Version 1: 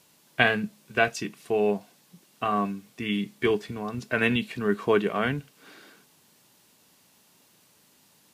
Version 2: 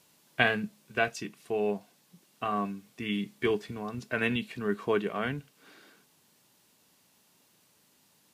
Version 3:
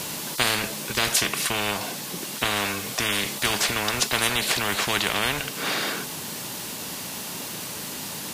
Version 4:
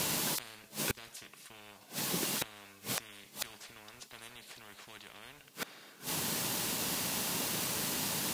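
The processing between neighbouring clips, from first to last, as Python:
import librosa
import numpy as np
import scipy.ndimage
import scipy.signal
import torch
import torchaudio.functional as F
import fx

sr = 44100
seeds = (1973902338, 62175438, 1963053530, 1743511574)

y1 = fx.rider(x, sr, range_db=4, speed_s=2.0)
y1 = y1 * 10.0 ** (-5.0 / 20.0)
y2 = fx.spectral_comp(y1, sr, ratio=10.0)
y2 = y2 * 10.0 ** (1.5 / 20.0)
y3 = np.sign(y2) * np.maximum(np.abs(y2) - 10.0 ** (-47.5 / 20.0), 0.0)
y3 = fx.gate_flip(y3, sr, shuts_db=-20.0, range_db=-27)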